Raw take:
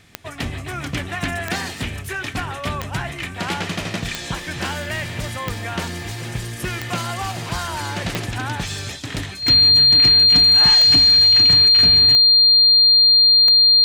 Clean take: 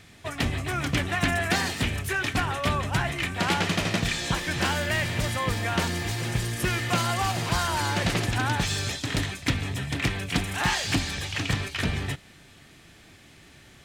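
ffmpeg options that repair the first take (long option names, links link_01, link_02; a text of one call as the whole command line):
ffmpeg -i in.wav -af "adeclick=threshold=4,bandreject=frequency=4200:width=30" out.wav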